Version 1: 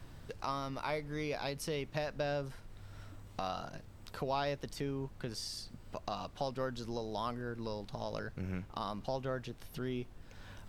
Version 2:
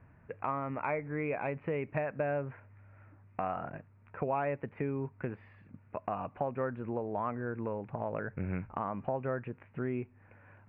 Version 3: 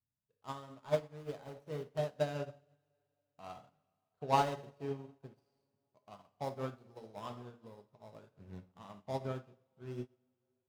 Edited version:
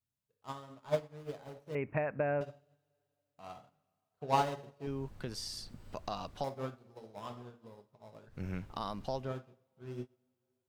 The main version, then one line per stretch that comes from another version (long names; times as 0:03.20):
3
0:01.75–0:02.41: punch in from 2
0:04.87–0:06.44: punch in from 1
0:08.34–0:09.25: punch in from 1, crossfade 0.16 s